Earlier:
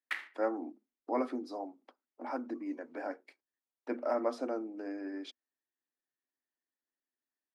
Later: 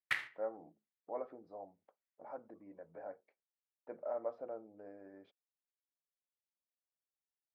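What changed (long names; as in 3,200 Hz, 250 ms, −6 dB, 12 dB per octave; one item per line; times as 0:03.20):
speech: add four-pole ladder band-pass 700 Hz, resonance 30%
master: remove Chebyshev high-pass with heavy ripple 240 Hz, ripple 3 dB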